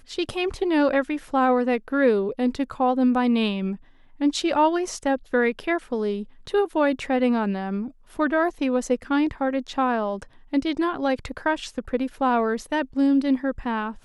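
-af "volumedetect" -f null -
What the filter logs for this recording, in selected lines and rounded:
mean_volume: -23.5 dB
max_volume: -8.5 dB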